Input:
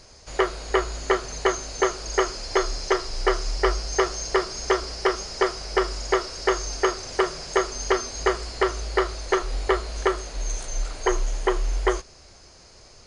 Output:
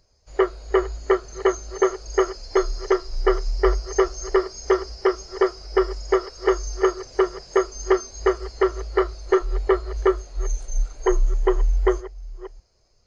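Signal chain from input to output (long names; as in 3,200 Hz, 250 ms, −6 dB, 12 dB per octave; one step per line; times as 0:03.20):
delay that plays each chunk backwards 630 ms, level −12 dB
every bin expanded away from the loudest bin 1.5 to 1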